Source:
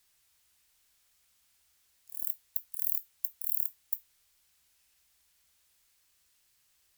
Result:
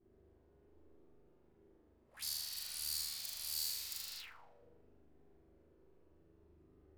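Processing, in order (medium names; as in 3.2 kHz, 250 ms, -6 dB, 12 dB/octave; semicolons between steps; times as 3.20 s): short-time spectra conjugated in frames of 104 ms; flutter echo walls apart 6.8 m, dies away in 1.4 s; touch-sensitive low-pass 350–4600 Hz up, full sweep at -35 dBFS; trim +17.5 dB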